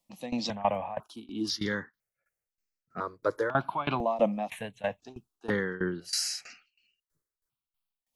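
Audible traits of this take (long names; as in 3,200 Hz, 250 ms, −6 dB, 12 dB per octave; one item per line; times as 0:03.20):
tremolo saw down 3.1 Hz, depth 90%
notches that jump at a steady rate 2 Hz 400–3,400 Hz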